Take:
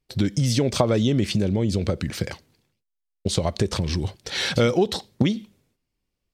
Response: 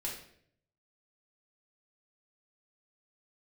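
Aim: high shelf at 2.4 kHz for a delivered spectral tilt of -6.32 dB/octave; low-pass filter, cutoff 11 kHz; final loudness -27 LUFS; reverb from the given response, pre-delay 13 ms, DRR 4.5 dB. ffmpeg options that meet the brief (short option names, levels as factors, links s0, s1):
-filter_complex "[0:a]lowpass=11000,highshelf=f=2400:g=-5,asplit=2[s0][s1];[1:a]atrim=start_sample=2205,adelay=13[s2];[s1][s2]afir=irnorm=-1:irlink=0,volume=0.531[s3];[s0][s3]amix=inputs=2:normalize=0,volume=0.596"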